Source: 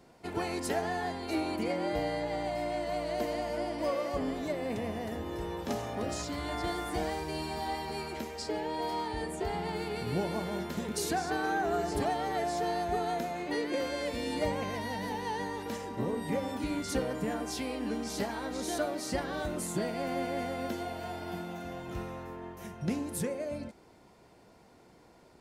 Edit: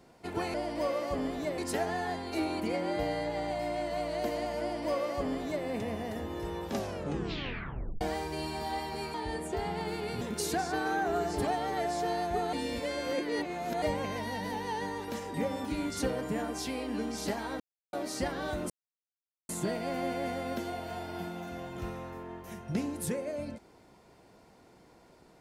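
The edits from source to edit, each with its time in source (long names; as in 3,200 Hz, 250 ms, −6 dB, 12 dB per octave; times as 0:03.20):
0:03.57–0:04.61: duplicate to 0:00.54
0:05.66: tape stop 1.31 s
0:08.10–0:09.02: remove
0:10.09–0:10.79: remove
0:13.11–0:14.40: reverse
0:15.92–0:16.26: remove
0:18.52–0:18.85: silence
0:19.62: splice in silence 0.79 s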